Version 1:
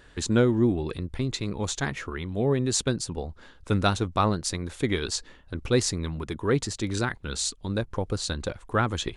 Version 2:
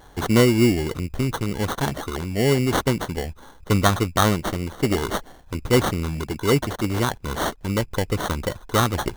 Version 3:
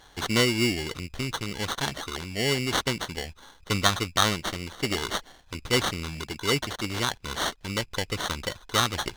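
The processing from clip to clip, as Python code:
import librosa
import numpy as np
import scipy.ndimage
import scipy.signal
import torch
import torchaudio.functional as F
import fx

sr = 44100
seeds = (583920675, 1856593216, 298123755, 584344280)

y1 = fx.sample_hold(x, sr, seeds[0], rate_hz=2500.0, jitter_pct=0)
y1 = F.gain(torch.from_numpy(y1), 5.0).numpy()
y2 = fx.peak_eq(y1, sr, hz=3800.0, db=13.0, octaves=2.9)
y2 = F.gain(torch.from_numpy(y2), -9.5).numpy()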